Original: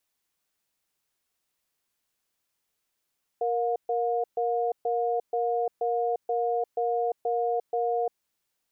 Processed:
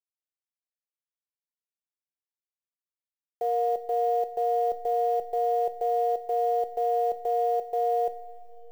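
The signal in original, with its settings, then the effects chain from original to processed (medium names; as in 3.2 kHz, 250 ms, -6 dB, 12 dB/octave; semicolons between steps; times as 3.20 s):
cadence 469 Hz, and 714 Hz, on 0.35 s, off 0.13 s, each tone -26.5 dBFS 4.75 s
send-on-delta sampling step -46.5 dBFS; two-slope reverb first 0.41 s, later 3.6 s, from -16 dB, DRR 8.5 dB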